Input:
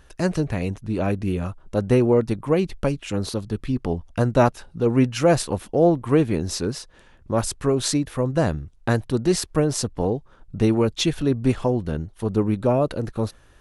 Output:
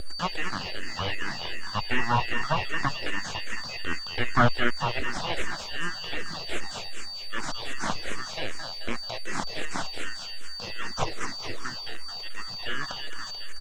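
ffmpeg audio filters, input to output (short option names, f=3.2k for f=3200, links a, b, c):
-filter_complex "[0:a]aeval=exprs='val(0)+0.0398*sin(2*PI*2300*n/s)':c=same,asetnsamples=n=441:p=0,asendcmd='4.99 highpass f 1500',highpass=690,aecho=1:1:218|436|654|872|1090|1308:0.447|0.214|0.103|0.0494|0.0237|0.0114,aeval=exprs='abs(val(0))':c=same,lowpass=f=7.6k:w=0.5412,lowpass=f=7.6k:w=1.3066,acrusher=bits=9:mix=0:aa=0.000001,acrossover=split=2500[a][b];[b]acompressor=threshold=-44dB:ratio=4:attack=1:release=60[c];[a][c]amix=inputs=2:normalize=0,asplit=2[d][e];[e]afreqshift=-2.6[f];[d][f]amix=inputs=2:normalize=1,volume=8dB"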